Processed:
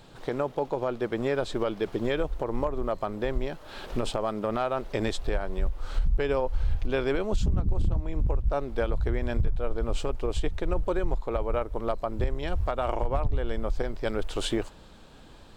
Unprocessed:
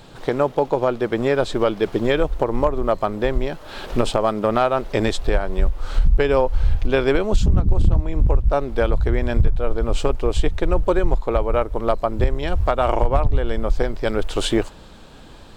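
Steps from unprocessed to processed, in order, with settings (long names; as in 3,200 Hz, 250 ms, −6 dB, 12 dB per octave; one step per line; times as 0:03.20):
brickwall limiter −9.5 dBFS, peak gain reduction 5 dB
level −7.5 dB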